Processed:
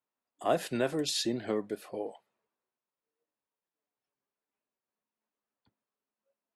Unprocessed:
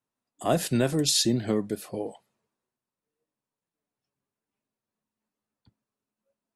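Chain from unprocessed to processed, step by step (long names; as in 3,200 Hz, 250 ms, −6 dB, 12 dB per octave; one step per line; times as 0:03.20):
bass and treble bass −13 dB, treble −10 dB
level −2 dB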